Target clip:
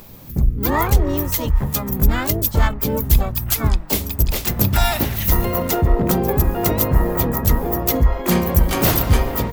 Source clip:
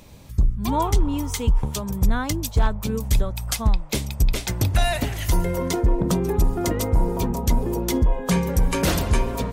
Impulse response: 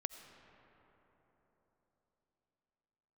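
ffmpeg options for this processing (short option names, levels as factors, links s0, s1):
-filter_complex "[0:a]aexciter=amount=4.6:drive=8.8:freq=12000,asplit=4[s0][s1][s2][s3];[s1]asetrate=52444,aresample=44100,atempo=0.840896,volume=0.282[s4];[s2]asetrate=58866,aresample=44100,atempo=0.749154,volume=0.562[s5];[s3]asetrate=88200,aresample=44100,atempo=0.5,volume=0.562[s6];[s0][s4][s5][s6]amix=inputs=4:normalize=0,volume=1.12"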